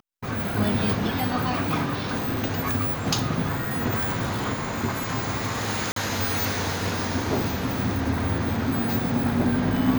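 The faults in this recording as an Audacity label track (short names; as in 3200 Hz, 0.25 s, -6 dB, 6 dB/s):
5.920000	5.960000	gap 43 ms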